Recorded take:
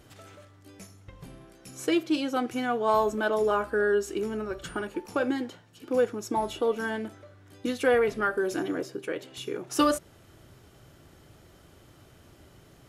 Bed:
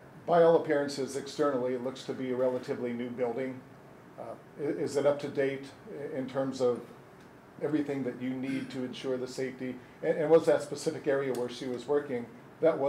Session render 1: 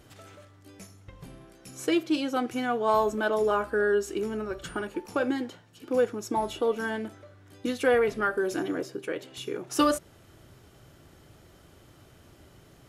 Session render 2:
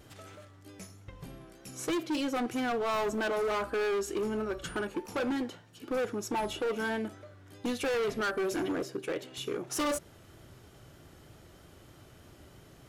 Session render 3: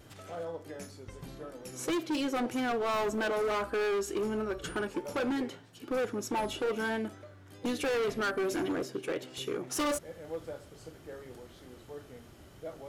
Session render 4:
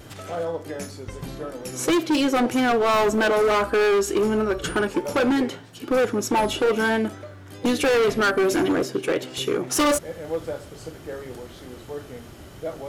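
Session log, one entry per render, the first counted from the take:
no audible change
hard clipper -28 dBFS, distortion -6 dB; vibrato 3.2 Hz 32 cents
add bed -17 dB
trim +11 dB

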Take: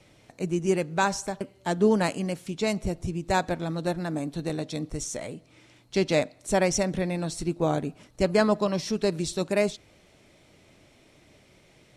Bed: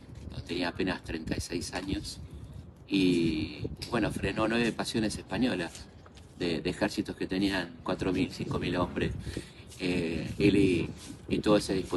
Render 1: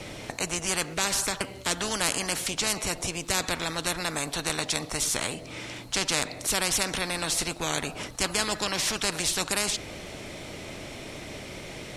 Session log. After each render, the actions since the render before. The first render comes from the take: spectrum-flattening compressor 4:1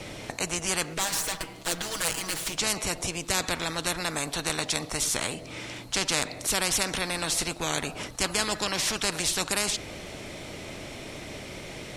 0.98–2.57 s: comb filter that takes the minimum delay 6.2 ms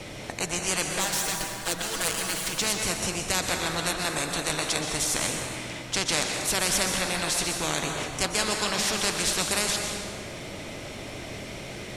plate-style reverb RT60 1.9 s, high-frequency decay 0.65×, pre-delay 110 ms, DRR 2.5 dB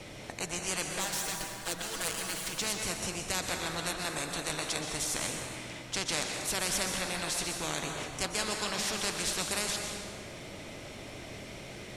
trim -6.5 dB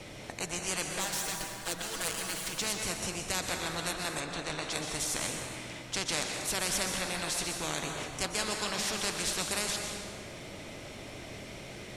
4.20–4.72 s: distance through air 72 m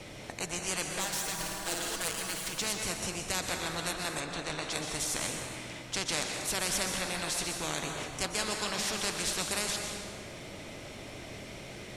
1.33–1.96 s: flutter echo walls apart 9.4 m, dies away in 1 s

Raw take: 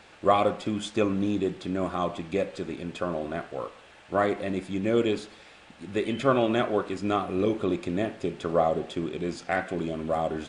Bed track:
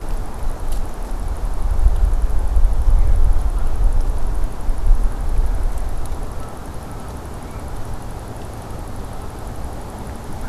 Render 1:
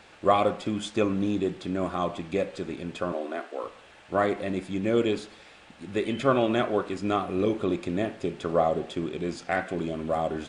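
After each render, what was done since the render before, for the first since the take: 3.12–3.64 s: steep high-pass 250 Hz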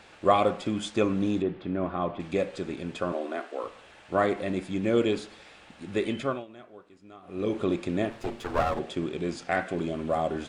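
1.42–2.20 s: distance through air 360 m; 6.07–7.60 s: dip -23 dB, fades 0.38 s; 8.10–8.79 s: comb filter that takes the minimum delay 8.6 ms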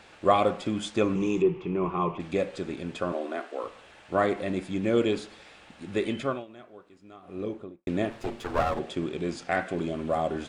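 1.15–2.18 s: rippled EQ curve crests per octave 0.74, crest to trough 14 dB; 7.16–7.87 s: studio fade out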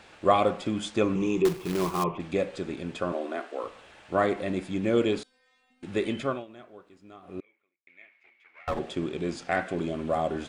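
1.45–2.04 s: companded quantiser 4-bit; 5.23–5.83 s: inharmonic resonator 250 Hz, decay 0.74 s, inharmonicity 0.002; 7.40–8.68 s: band-pass filter 2.2 kHz, Q 17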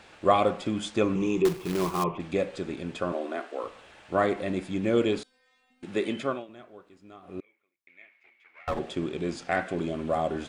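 5.85–6.49 s: high-pass 150 Hz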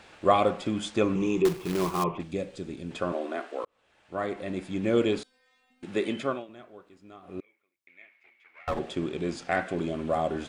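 2.23–2.91 s: peaking EQ 1.2 kHz -10.5 dB 2.9 oct; 3.65–4.93 s: fade in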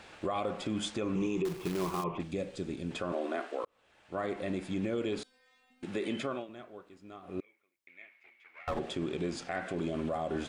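compression 3:1, threshold -27 dBFS, peak gain reduction 9.5 dB; peak limiter -24 dBFS, peak gain reduction 8 dB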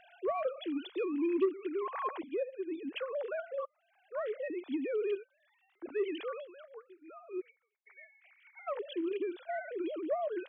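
formants replaced by sine waves; saturation -21.5 dBFS, distortion -17 dB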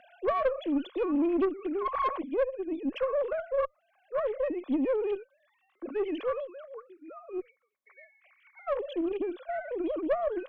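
small resonant body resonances 250/530/1100 Hz, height 12 dB, ringing for 25 ms; valve stage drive 20 dB, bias 0.35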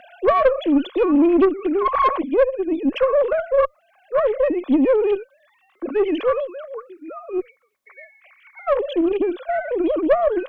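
trim +11.5 dB

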